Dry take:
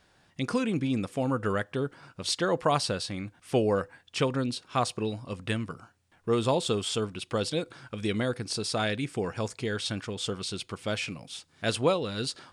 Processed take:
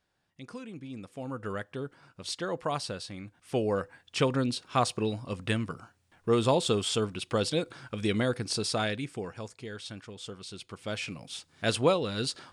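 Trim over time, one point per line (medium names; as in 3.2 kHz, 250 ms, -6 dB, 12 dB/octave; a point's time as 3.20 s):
0.80 s -14.5 dB
1.55 s -6.5 dB
3.20 s -6.5 dB
4.29 s +1 dB
8.65 s +1 dB
9.50 s -9.5 dB
10.41 s -9.5 dB
11.33 s +0.5 dB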